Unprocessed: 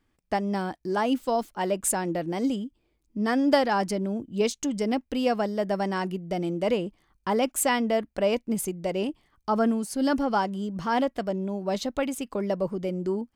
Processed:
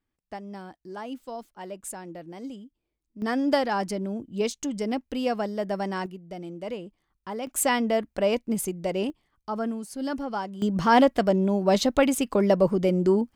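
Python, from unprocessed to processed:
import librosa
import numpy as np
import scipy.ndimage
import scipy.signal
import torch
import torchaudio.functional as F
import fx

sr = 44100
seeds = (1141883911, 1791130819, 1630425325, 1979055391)

y = fx.gain(x, sr, db=fx.steps((0.0, -11.5), (3.22, -2.0), (6.06, -9.0), (7.47, 0.5), (9.1, -6.0), (10.62, 7.0)))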